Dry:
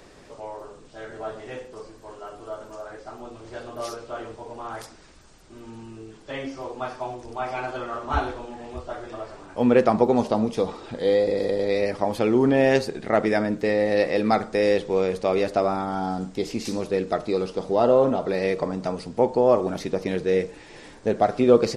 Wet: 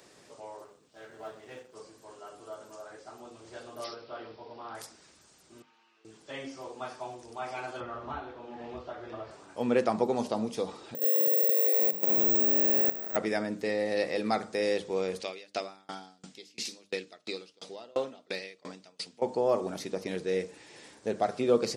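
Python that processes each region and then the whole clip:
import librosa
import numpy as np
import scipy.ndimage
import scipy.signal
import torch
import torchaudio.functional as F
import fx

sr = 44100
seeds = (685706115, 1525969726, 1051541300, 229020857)

y = fx.chain(x, sr, fx.law_mismatch(coded='A'),
    fx.high_shelf(hz=7000.0, db=-7.0), at=(0.64, 1.75))
y = fx.chain(y, sr, fx.highpass(hz=45.0, slope=12),
    fx.resample_bad(factor=4, down='none', up='filtered'), at=(3.84, 4.75))
y = fx.chain(y, sr, fx.highpass(hz=1300.0, slope=12),
    fx.air_absorb(metres=250.0), at=(5.62, 6.05))
y = fx.chain(y, sr, fx.air_absorb(metres=230.0),
    fx.band_squash(depth_pct=100), at=(7.8, 9.31))
y = fx.chain(y, sr, fx.spec_blur(span_ms=496.0),
    fx.level_steps(step_db=13),
    fx.resample_bad(factor=2, down='none', up='zero_stuff'), at=(10.95, 13.16))
y = fx.chain(y, sr, fx.weighting(curve='D'),
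    fx.tremolo_decay(direction='decaying', hz=2.9, depth_db=33), at=(15.2, 19.22))
y = scipy.signal.sosfilt(scipy.signal.butter(2, 110.0, 'highpass', fs=sr, output='sos'), y)
y = fx.high_shelf(y, sr, hz=4000.0, db=9.5)
y = fx.hum_notches(y, sr, base_hz=50, count=6)
y = y * 10.0 ** (-8.5 / 20.0)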